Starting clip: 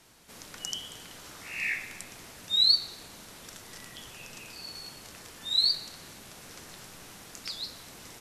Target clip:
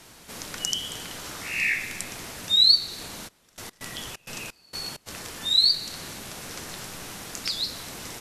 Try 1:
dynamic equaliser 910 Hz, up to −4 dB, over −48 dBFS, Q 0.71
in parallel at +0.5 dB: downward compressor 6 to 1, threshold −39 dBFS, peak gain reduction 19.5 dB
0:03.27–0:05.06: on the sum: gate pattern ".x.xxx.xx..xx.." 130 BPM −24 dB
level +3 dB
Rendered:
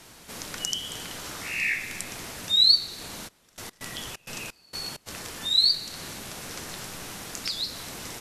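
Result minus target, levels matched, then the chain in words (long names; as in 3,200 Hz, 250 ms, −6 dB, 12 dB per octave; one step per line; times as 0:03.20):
downward compressor: peak gain reduction +6 dB
dynamic equaliser 910 Hz, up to −4 dB, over −48 dBFS, Q 0.71
in parallel at +0.5 dB: downward compressor 6 to 1, threshold −32 dBFS, peak gain reduction 13.5 dB
0:03.27–0:05.06: on the sum: gate pattern ".x.xxx.xx..xx.." 130 BPM −24 dB
level +3 dB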